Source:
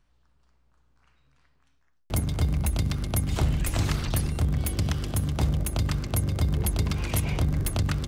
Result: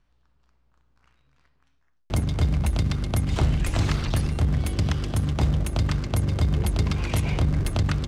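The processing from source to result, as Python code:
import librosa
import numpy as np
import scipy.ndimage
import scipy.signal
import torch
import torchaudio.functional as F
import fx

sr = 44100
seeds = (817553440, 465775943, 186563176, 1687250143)

p1 = fx.quant_companded(x, sr, bits=4)
p2 = x + F.gain(torch.from_numpy(p1), -9.0).numpy()
y = fx.air_absorb(p2, sr, metres=55.0)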